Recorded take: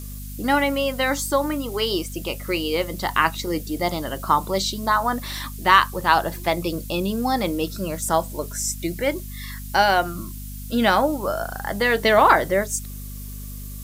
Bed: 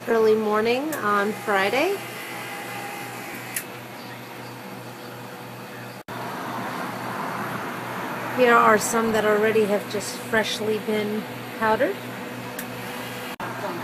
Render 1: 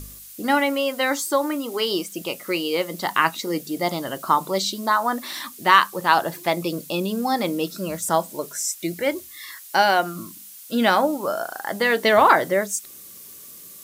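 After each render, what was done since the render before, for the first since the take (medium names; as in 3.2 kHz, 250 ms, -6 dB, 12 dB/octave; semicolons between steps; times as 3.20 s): de-hum 50 Hz, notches 5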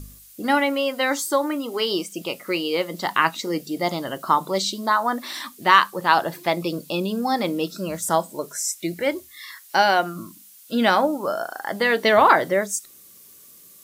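noise print and reduce 6 dB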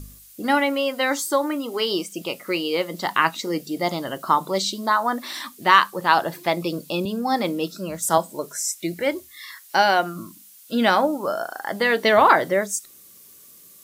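7.05–8.18 s: three bands expanded up and down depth 40%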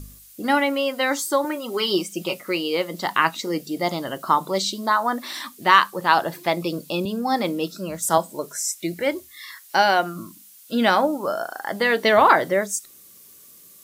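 1.44–2.41 s: comb 5.4 ms, depth 66%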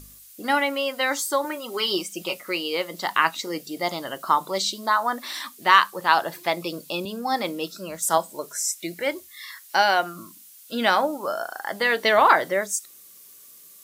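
bass shelf 390 Hz -9.5 dB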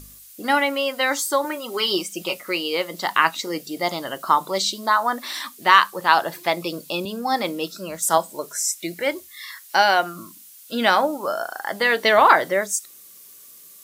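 trim +2.5 dB; peak limiter -1 dBFS, peak gain reduction 1 dB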